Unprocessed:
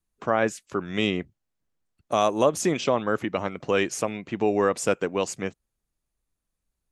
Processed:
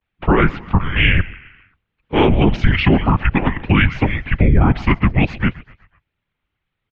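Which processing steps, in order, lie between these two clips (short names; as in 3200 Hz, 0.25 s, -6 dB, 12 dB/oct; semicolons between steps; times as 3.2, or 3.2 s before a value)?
bell 960 Hz -10.5 dB 1.8 oct; 0.75–2.58 transient shaper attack -10 dB, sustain +6 dB; frequency-shifting echo 0.129 s, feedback 54%, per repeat -65 Hz, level -20.5 dB; whisperiser; vibrato 0.57 Hz 70 cents; mistuned SSB -310 Hz 260–3300 Hz; maximiser +21.5 dB; gain -2.5 dB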